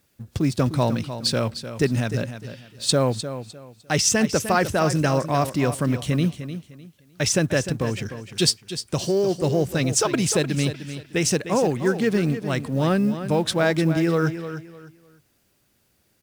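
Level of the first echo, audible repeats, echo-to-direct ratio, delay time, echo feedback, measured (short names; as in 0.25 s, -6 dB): -11.0 dB, 3, -10.5 dB, 0.303 s, 26%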